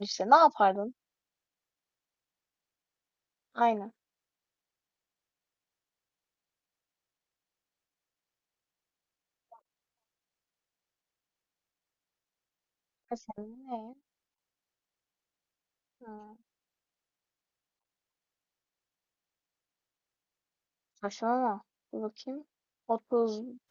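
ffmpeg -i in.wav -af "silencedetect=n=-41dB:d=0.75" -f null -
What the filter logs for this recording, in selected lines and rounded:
silence_start: 0.90
silence_end: 3.56 | silence_duration: 2.66
silence_start: 3.88
silence_end: 13.11 | silence_duration: 9.23
silence_start: 13.87
silence_end: 16.07 | silence_duration: 2.20
silence_start: 16.22
silence_end: 21.03 | silence_duration: 4.81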